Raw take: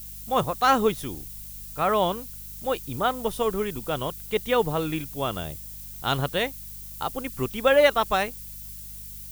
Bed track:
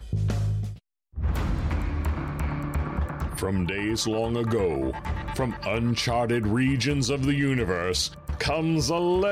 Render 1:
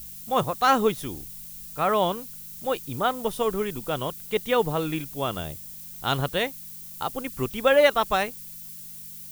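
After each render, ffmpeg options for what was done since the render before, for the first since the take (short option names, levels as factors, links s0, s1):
-af "bandreject=f=50:t=h:w=4,bandreject=f=100:t=h:w=4"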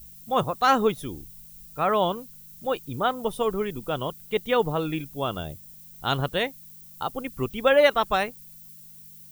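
-af "afftdn=nr=9:nf=-41"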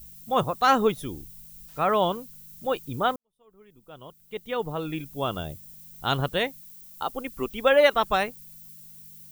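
-filter_complex "[0:a]asettb=1/sr,asplit=3[s0][s1][s2];[s0]atrim=end=1.684[s3];[s1]atrim=start=1.68:end=2.17,asetpts=PTS-STARTPTS,afade=t=in:d=0.004:c=qsin,afade=t=out:st=0.486:d=0.004:c=qsin,aeval=exprs='val(0)*gte(abs(val(0)),0.00501)':c=same[s4];[s2]atrim=start=2.166[s5];[s3][s4]acrossfade=d=0.004:c1=hsin:c2=qsin[s6];[s6][s5]acrossfade=d=0.004:c1=qsin:c2=hsin,asettb=1/sr,asplit=3[s7][s8][s9];[s7]atrim=end=6.614[s10];[s8]atrim=start=6.61:end=7.93,asetpts=PTS-STARTPTS,afade=t=in:d=0.004:c=qsin,afade=t=out:st=1.316:d=0.004:c=qsin,equalizer=f=120:w=1.5:g=-12.5[s11];[s9]atrim=start=7.926[s12];[s10][s11]acrossfade=d=0.004:c1=hsin:c2=qsin[s13];[s13][s12]acrossfade=d=0.004:c1=qsin:c2=hsin,asplit=2[s14][s15];[s14]atrim=end=3.16,asetpts=PTS-STARTPTS,afade=t=out:st=3.156:d=0.004:c=hsin[s16];[s15]atrim=start=3.16,asetpts=PTS-STARTPTS,afade=t=in:d=2.09:c=qua[s17];[s16][s17]concat=n=2:v=0:a=1"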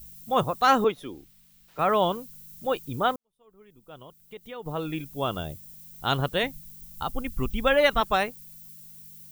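-filter_complex "[0:a]asettb=1/sr,asplit=3[s0][s1][s2];[s0]atrim=end=0.844[s3];[s1]atrim=start=0.84:end=1.79,asetpts=PTS-STARTPTS,afade=t=in:d=0.004:c=qsin,afade=t=out:st=0.946:d=0.004:c=qsin,acrossover=split=250 4300:gain=0.224 1 0.251[s4][s5][s6];[s4][s5][s6]amix=inputs=3:normalize=0[s7];[s2]atrim=start=1.786[s8];[s3][s7]acrossfade=d=0.004:c1=hsin:c2=qsin[s9];[s9][s8]acrossfade=d=0.004:c1=qsin:c2=hsin,asettb=1/sr,asplit=3[s10][s11][s12];[s10]atrim=end=4.024[s13];[s11]atrim=start=4.02:end=4.66,asetpts=PTS-STARTPTS,afade=t=in:d=0.004:c=qsin,afade=t=out:st=0.636:d=0.004:c=qsin,acompressor=threshold=0.00708:ratio=2:attack=3.2:release=140:knee=1:detection=peak[s14];[s12]atrim=start=4.656[s15];[s13][s14]acrossfade=d=0.004:c1=hsin:c2=qsin[s16];[s16][s15]acrossfade=d=0.004:c1=qsin:c2=hsin,asplit=3[s17][s18][s19];[s17]afade=t=out:st=6.42:d=0.02[s20];[s18]asubboost=boost=7:cutoff=150,afade=t=in:st=6.42:d=0.02,afade=t=out:st=8:d=0.02[s21];[s19]afade=t=in:st=8:d=0.02[s22];[s20][s21][s22]amix=inputs=3:normalize=0"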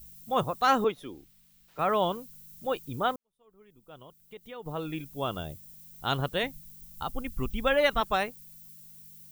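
-af "volume=0.668"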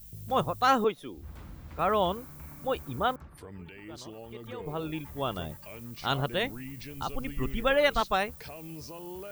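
-filter_complex "[1:a]volume=0.112[s0];[0:a][s0]amix=inputs=2:normalize=0"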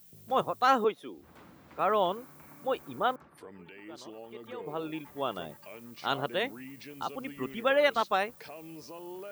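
-af "highpass=250,highshelf=f=3800:g=-6"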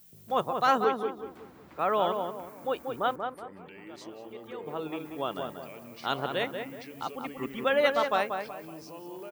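-filter_complex "[0:a]asplit=2[s0][s1];[s1]adelay=186,lowpass=f=1800:p=1,volume=0.562,asplit=2[s2][s3];[s3]adelay=186,lowpass=f=1800:p=1,volume=0.37,asplit=2[s4][s5];[s5]adelay=186,lowpass=f=1800:p=1,volume=0.37,asplit=2[s6][s7];[s7]adelay=186,lowpass=f=1800:p=1,volume=0.37,asplit=2[s8][s9];[s9]adelay=186,lowpass=f=1800:p=1,volume=0.37[s10];[s0][s2][s4][s6][s8][s10]amix=inputs=6:normalize=0"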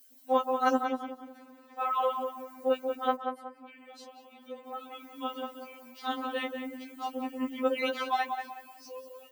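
-af "afftfilt=real='re*3.46*eq(mod(b,12),0)':imag='im*3.46*eq(mod(b,12),0)':win_size=2048:overlap=0.75"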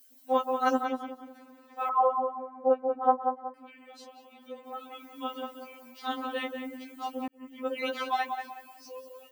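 -filter_complex "[0:a]asettb=1/sr,asplit=3[s0][s1][s2];[s0]atrim=end=1.894[s3];[s1]atrim=start=1.89:end=3.54,asetpts=PTS-STARTPTS,afade=t=in:d=0.004:c=qsin,afade=t=out:st=1.646:d=0.004:c=qsin,lowpass=f=880:t=q:w=2.5[s4];[s2]atrim=start=3.536[s5];[s3][s4]acrossfade=d=0.004:c1=hsin:c2=qsin[s6];[s6][s5]acrossfade=d=0.004:c1=qsin:c2=hsin,asplit=2[s7][s8];[s7]atrim=end=7.28,asetpts=PTS-STARTPTS,afade=t=out:st=7.276:d=0.004:c=hsin[s9];[s8]atrim=start=7.28,asetpts=PTS-STARTPTS,afade=t=in:d=0.7[s10];[s9][s10]concat=n=2:v=0:a=1"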